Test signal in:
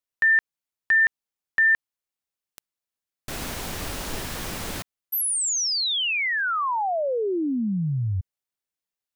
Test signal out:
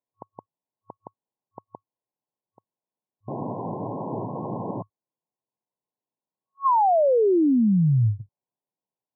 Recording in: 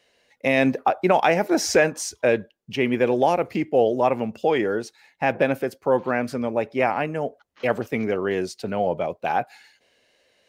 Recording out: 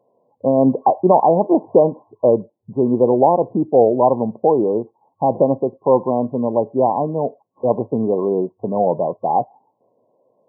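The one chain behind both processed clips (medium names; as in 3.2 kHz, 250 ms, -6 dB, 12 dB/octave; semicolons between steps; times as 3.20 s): FFT band-pass 100–1100 Hz; trim +6 dB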